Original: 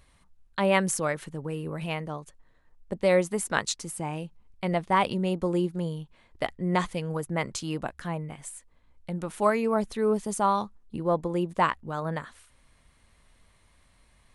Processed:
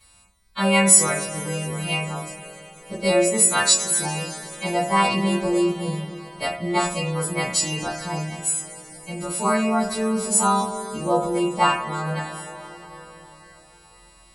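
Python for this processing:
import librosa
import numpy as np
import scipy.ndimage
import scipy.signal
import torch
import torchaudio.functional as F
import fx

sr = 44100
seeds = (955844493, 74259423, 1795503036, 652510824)

y = fx.freq_snap(x, sr, grid_st=2)
y = fx.rev_double_slope(y, sr, seeds[0], early_s=0.32, late_s=4.9, knee_db=-22, drr_db=-9.0)
y = y * 10.0 ** (-4.0 / 20.0)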